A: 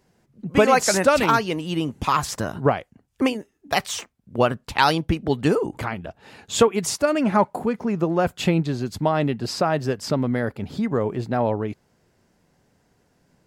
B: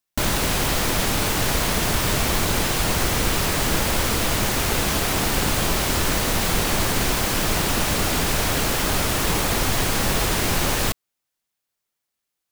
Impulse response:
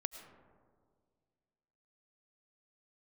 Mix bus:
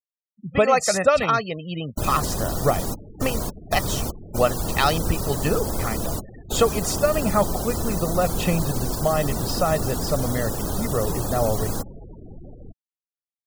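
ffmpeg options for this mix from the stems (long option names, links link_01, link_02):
-filter_complex "[0:a]aecho=1:1:1.6:0.58,volume=-3dB,asplit=2[link_01][link_02];[1:a]equalizer=frequency=2200:width=0.67:gain=-12.5,adelay=1800,volume=-2.5dB[link_03];[link_02]apad=whole_len=631181[link_04];[link_03][link_04]sidechaingate=range=-13dB:threshold=-44dB:ratio=16:detection=peak[link_05];[link_01][link_05]amix=inputs=2:normalize=0,afftfilt=real='re*gte(hypot(re,im),0.0224)':imag='im*gte(hypot(re,im),0.0224)':win_size=1024:overlap=0.75"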